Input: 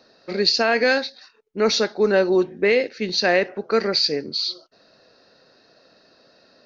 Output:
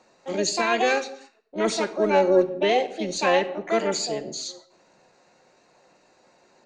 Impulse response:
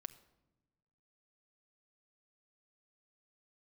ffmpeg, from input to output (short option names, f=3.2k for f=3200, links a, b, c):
-filter_complex "[0:a]lowpass=f=2.4k:p=1,asplit=2[a][b];[b]asetrate=66075,aresample=44100,atempo=0.66742,volume=-1dB[c];[a][c]amix=inputs=2:normalize=0[d];[1:a]atrim=start_sample=2205,afade=t=out:st=0.35:d=0.01,atrim=end_sample=15876[e];[d][e]afir=irnorm=-1:irlink=0"